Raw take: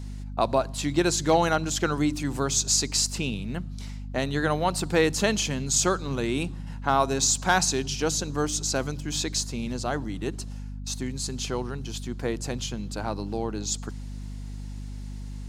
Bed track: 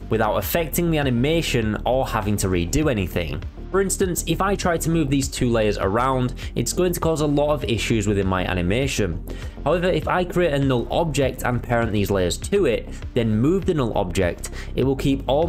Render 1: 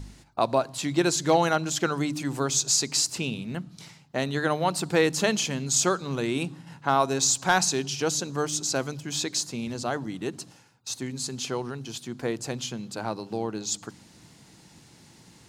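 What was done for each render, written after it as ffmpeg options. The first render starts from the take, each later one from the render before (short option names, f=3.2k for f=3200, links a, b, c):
-af "bandreject=f=50:t=h:w=4,bandreject=f=100:t=h:w=4,bandreject=f=150:t=h:w=4,bandreject=f=200:t=h:w=4,bandreject=f=250:t=h:w=4,bandreject=f=300:t=h:w=4"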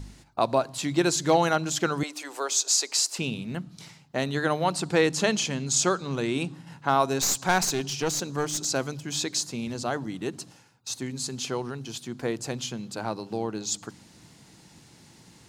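-filter_complex "[0:a]asettb=1/sr,asplit=3[a][b][c];[a]atrim=end=2.034[d];[b]atrim=start=2.03:end=3.19,asetpts=PTS-STARTPTS,afade=t=in:d=0.004:c=qsin,afade=t=out:st=1.156:d=0.004:c=qsin,highpass=f=430:w=0.5412,highpass=f=430:w=1.3066[e];[c]atrim=start=3.186[f];[d][e]acrossfade=d=0.004:c1=hsin:c2=qsin[g];[g][f]acrossfade=d=0.004:c1=qsin:c2=hsin,asettb=1/sr,asplit=3[h][i][j];[h]atrim=end=4.744[k];[i]atrim=start=4.74:end=6.54,asetpts=PTS-STARTPTS,afade=t=in:d=0.004:c=qsin,afade=t=out:st=1.796:d=0.004:c=qsin,lowpass=9.8k[l];[j]atrim=start=6.536[m];[k][l]acrossfade=d=0.004:c1=hsin:c2=qsin[n];[n][m]acrossfade=d=0.004:c1=qsin:c2=hsin,asettb=1/sr,asplit=3[o][p][q];[o]atrim=end=7.214[r];[p]atrim=start=7.21:end=8.65,asetpts=PTS-STARTPTS,afade=t=in:d=0.004:c=qsin,afade=t=out:st=1.436:d=0.004:c=qsin,aeval=exprs='clip(val(0),-1,0.0447)':c=same[s];[q]atrim=start=8.646[t];[r][s]acrossfade=d=0.004:c1=hsin:c2=qsin[u];[u][t]acrossfade=d=0.004:c1=qsin:c2=hsin"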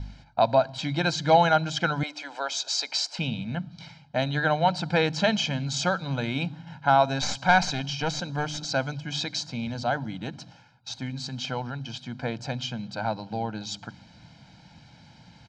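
-af "lowpass=f=4.8k:w=0.5412,lowpass=f=4.8k:w=1.3066,aecho=1:1:1.3:0.82"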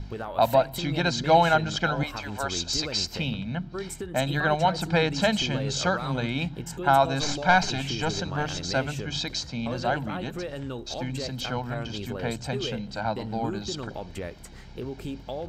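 -filter_complex "[1:a]volume=-15dB[a];[0:a][a]amix=inputs=2:normalize=0"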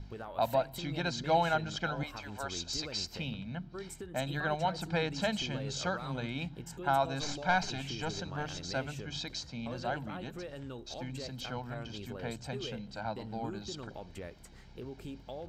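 -af "volume=-9dB"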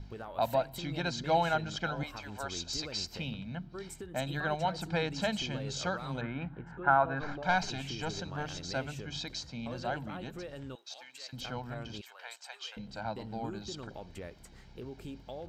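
-filter_complex "[0:a]asettb=1/sr,asplit=3[a][b][c];[a]atrim=end=6.214[d];[b]atrim=start=6.21:end=7.43,asetpts=PTS-STARTPTS,afade=t=in:d=0.004:c=qsin,afade=t=out:st=1.216:d=0.004:c=qsin,lowpass=f=1.5k:t=q:w=2.7[e];[c]atrim=start=7.426[f];[d][e]acrossfade=d=0.004:c1=hsin:c2=qsin[g];[g][f]acrossfade=d=0.004:c1=qsin:c2=hsin,asettb=1/sr,asplit=3[h][i][j];[h]atrim=end=10.754[k];[i]atrim=start=10.75:end=11.33,asetpts=PTS-STARTPTS,afade=t=in:d=0.004:c=qsin,afade=t=out:st=0.576:d=0.004:c=qsin,highpass=1.2k[l];[j]atrim=start=11.326[m];[k][l]acrossfade=d=0.004:c1=hsin:c2=qsin[n];[n][m]acrossfade=d=0.004:c1=qsin:c2=hsin,asettb=1/sr,asplit=3[o][p][q];[o]atrim=end=12.014[r];[p]atrim=start=12.01:end=12.77,asetpts=PTS-STARTPTS,afade=t=in:d=0.004:c=qsin,afade=t=out:st=0.756:d=0.004:c=qsin,highpass=f=830:w=0.5412,highpass=f=830:w=1.3066[s];[q]atrim=start=12.766[t];[r][s]acrossfade=d=0.004:c1=hsin:c2=qsin[u];[u][t]acrossfade=d=0.004:c1=qsin:c2=hsin"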